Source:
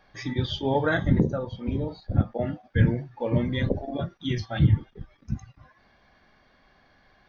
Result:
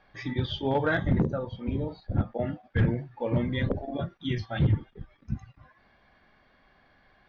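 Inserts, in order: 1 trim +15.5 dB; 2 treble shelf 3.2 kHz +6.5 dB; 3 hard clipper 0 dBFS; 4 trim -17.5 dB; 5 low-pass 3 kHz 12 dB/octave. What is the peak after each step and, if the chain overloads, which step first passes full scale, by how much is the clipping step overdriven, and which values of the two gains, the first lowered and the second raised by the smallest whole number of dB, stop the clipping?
+6.5 dBFS, +6.5 dBFS, 0.0 dBFS, -17.5 dBFS, -17.0 dBFS; step 1, 6.5 dB; step 1 +8.5 dB, step 4 -10.5 dB

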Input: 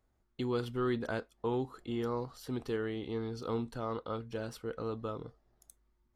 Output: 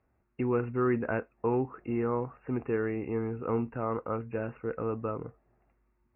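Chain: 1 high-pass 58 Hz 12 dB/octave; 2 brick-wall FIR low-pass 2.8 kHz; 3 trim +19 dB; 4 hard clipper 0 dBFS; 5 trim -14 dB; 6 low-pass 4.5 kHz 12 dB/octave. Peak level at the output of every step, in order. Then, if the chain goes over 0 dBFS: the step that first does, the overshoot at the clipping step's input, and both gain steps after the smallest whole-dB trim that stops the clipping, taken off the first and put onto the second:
-22.0 dBFS, -22.0 dBFS, -3.0 dBFS, -3.0 dBFS, -17.0 dBFS, -17.0 dBFS; nothing clips

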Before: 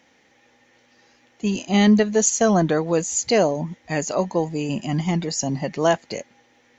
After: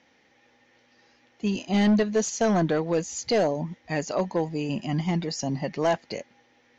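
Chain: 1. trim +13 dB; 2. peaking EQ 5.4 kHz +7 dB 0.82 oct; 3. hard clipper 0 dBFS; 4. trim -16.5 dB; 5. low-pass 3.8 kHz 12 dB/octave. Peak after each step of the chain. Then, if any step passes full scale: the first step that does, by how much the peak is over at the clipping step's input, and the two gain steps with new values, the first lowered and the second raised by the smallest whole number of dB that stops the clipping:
+7.5 dBFS, +10.0 dBFS, 0.0 dBFS, -16.5 dBFS, -16.0 dBFS; step 1, 10.0 dB; step 1 +3 dB, step 4 -6.5 dB

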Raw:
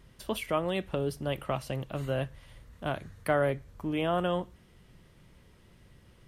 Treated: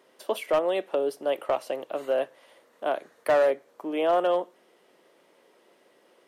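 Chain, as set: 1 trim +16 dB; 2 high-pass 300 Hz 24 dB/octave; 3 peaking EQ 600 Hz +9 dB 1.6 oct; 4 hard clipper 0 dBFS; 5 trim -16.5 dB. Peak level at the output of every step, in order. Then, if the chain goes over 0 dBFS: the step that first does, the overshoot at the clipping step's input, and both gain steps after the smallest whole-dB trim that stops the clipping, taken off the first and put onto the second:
+2.0 dBFS, +1.5 dBFS, +7.5 dBFS, 0.0 dBFS, -16.5 dBFS; step 1, 7.5 dB; step 1 +8 dB, step 5 -8.5 dB

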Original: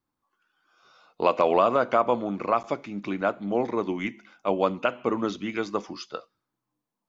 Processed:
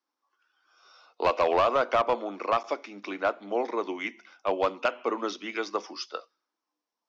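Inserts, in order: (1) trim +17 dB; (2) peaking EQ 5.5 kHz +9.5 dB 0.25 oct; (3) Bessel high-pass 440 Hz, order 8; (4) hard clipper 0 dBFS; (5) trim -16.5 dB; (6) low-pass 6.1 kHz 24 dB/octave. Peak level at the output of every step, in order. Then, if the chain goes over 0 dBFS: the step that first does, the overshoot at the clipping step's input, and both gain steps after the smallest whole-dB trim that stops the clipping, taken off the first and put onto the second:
+9.0 dBFS, +9.5 dBFS, +8.0 dBFS, 0.0 dBFS, -16.5 dBFS, -15.5 dBFS; step 1, 8.0 dB; step 1 +9 dB, step 5 -8.5 dB

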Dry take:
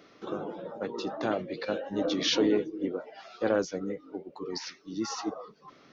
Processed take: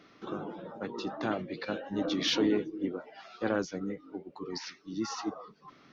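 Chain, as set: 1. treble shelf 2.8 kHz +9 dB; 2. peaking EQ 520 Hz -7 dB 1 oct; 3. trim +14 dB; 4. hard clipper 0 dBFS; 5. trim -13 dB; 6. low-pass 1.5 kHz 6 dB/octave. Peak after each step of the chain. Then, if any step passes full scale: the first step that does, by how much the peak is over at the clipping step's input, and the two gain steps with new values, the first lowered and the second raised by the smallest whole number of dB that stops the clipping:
-10.5 dBFS, -10.5 dBFS, +3.5 dBFS, 0.0 dBFS, -13.0 dBFS, -16.0 dBFS; step 3, 3.5 dB; step 3 +10 dB, step 5 -9 dB

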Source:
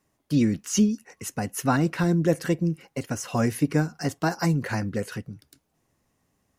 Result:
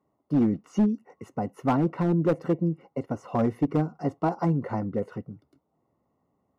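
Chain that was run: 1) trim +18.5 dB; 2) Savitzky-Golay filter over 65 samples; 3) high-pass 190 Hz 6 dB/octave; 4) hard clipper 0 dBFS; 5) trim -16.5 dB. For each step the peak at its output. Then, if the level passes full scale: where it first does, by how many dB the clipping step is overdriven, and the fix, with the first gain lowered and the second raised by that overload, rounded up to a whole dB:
+11.0 dBFS, +9.5 dBFS, +8.5 dBFS, 0.0 dBFS, -16.5 dBFS; step 1, 8.5 dB; step 1 +9.5 dB, step 5 -7.5 dB

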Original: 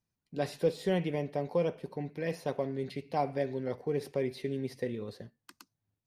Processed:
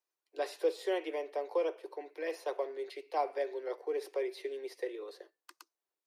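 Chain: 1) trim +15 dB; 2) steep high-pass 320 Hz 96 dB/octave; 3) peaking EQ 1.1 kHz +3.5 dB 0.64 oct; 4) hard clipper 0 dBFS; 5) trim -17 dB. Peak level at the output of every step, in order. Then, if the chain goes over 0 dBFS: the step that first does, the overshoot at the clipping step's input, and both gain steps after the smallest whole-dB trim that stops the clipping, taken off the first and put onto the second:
-1.0 dBFS, -3.0 dBFS, -3.0 dBFS, -3.0 dBFS, -20.0 dBFS; nothing clips

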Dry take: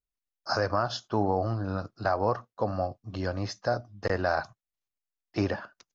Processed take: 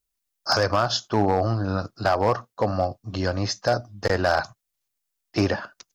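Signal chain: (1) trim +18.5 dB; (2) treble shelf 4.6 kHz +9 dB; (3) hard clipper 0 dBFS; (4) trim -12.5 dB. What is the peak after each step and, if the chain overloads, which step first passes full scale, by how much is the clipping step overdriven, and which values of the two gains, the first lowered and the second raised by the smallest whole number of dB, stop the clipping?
+4.5 dBFS, +5.0 dBFS, 0.0 dBFS, -12.5 dBFS; step 1, 5.0 dB; step 1 +13.5 dB, step 4 -7.5 dB

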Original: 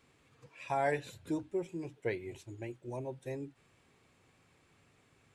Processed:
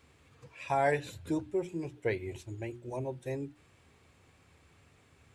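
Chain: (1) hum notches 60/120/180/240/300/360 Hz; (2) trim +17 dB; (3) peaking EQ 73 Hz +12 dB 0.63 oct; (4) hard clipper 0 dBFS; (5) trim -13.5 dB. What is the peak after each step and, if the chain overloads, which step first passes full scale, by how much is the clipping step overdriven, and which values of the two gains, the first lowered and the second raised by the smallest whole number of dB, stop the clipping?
-20.5 dBFS, -3.5 dBFS, -3.5 dBFS, -3.5 dBFS, -17.0 dBFS; nothing clips

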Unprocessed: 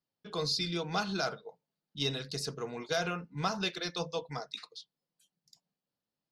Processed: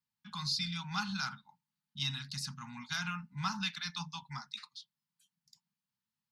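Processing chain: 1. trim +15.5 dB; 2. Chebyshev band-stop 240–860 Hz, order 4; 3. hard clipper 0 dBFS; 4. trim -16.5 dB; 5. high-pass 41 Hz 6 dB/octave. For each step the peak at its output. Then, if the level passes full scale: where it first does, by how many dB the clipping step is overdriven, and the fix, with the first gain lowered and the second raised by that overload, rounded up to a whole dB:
-2.0 dBFS, -4.5 dBFS, -4.5 dBFS, -21.0 dBFS, -21.0 dBFS; nothing clips

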